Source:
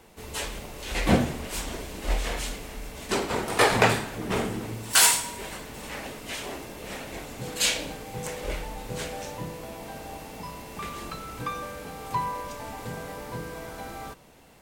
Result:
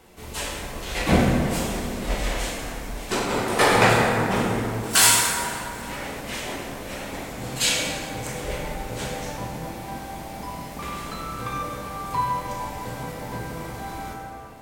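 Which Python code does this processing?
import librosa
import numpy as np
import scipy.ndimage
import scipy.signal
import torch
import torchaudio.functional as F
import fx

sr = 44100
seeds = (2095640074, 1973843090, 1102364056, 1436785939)

y = fx.rev_plate(x, sr, seeds[0], rt60_s=2.5, hf_ratio=0.5, predelay_ms=0, drr_db=-2.5)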